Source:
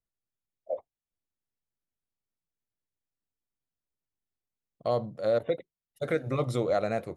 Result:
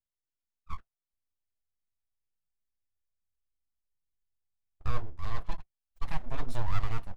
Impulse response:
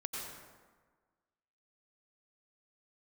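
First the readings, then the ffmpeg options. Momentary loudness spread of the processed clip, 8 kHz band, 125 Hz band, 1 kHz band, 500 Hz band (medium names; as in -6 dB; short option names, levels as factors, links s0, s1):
13 LU, no reading, -1.0 dB, -4.5 dB, -21.5 dB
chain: -af "flanger=delay=1:depth=10:regen=-27:speed=0.31:shape=triangular,aeval=exprs='abs(val(0))':c=same,asubboost=boost=6:cutoff=110,volume=0.708"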